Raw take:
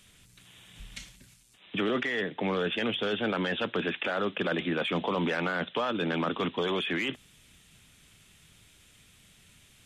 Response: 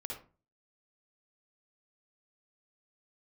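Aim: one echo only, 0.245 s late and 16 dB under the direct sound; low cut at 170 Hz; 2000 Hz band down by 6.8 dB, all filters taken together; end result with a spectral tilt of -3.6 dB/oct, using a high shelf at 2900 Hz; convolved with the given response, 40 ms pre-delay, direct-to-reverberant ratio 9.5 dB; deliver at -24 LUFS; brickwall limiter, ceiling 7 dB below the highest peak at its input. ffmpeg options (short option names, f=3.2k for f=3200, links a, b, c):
-filter_complex "[0:a]highpass=170,equalizer=f=2k:t=o:g=-7.5,highshelf=f=2.9k:g=-4.5,alimiter=level_in=1.5dB:limit=-24dB:level=0:latency=1,volume=-1.5dB,aecho=1:1:245:0.158,asplit=2[a][b];[1:a]atrim=start_sample=2205,adelay=40[c];[b][c]afir=irnorm=-1:irlink=0,volume=-8.5dB[d];[a][d]amix=inputs=2:normalize=0,volume=10.5dB"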